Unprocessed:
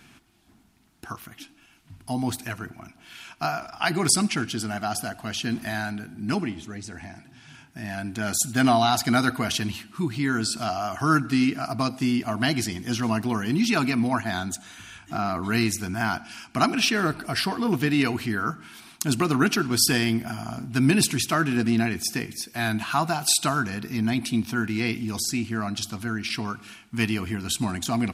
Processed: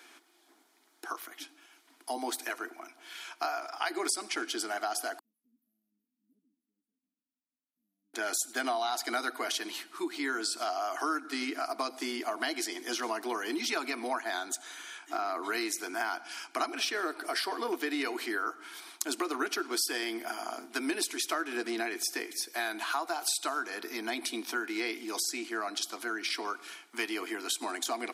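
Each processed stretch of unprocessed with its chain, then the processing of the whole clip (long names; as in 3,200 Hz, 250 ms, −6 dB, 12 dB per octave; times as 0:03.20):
0:05.19–0:08.14: inverse Chebyshev band-stop filter 1,200–4,800 Hz, stop band 80 dB + guitar amp tone stack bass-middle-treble 10-0-1 + phaser with its sweep stopped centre 1,300 Hz, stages 6
whole clip: Butterworth high-pass 310 Hz 48 dB per octave; notch filter 2,700 Hz, Q 8.4; downward compressor 4 to 1, threshold −30 dBFS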